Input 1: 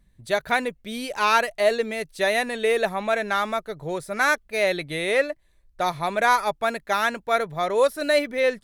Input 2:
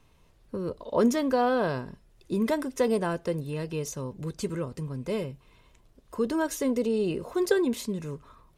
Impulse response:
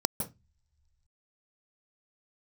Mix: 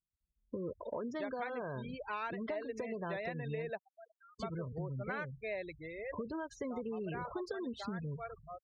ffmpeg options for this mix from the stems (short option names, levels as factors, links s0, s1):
-filter_complex "[0:a]adelay=900,volume=0.237,afade=t=out:st=5.65:d=0.44:silence=0.334965[s0];[1:a]asubboost=boost=8.5:cutoff=94,acompressor=threshold=0.0251:ratio=4,adynamicequalizer=threshold=0.00158:dfrequency=4400:dqfactor=0.9:tfrequency=4400:tqfactor=0.9:attack=5:release=100:ratio=0.375:range=2.5:mode=boostabove:tftype=bell,volume=0.841,asplit=3[s1][s2][s3];[s1]atrim=end=3.7,asetpts=PTS-STARTPTS,afade=t=out:st=3.696:d=0.004:c=hsin[s4];[s2]atrim=start=3.7:end=4.39,asetpts=PTS-STARTPTS,volume=0[s5];[s3]atrim=start=4.39,asetpts=PTS-STARTPTS,afade=t=in:d=0.004:c=hsin[s6];[s4][s5][s6]concat=n=3:v=0:a=1,asplit=2[s7][s8];[s8]apad=whole_len=420485[s9];[s0][s9]sidechaingate=range=0.112:threshold=0.00355:ratio=16:detection=peak[s10];[s10][s7]amix=inputs=2:normalize=0,afftfilt=real='re*gte(hypot(re,im),0.0141)':imag='im*gte(hypot(re,im),0.0141)':win_size=1024:overlap=0.75,highpass=130,lowpass=2700,acompressor=threshold=0.0158:ratio=6"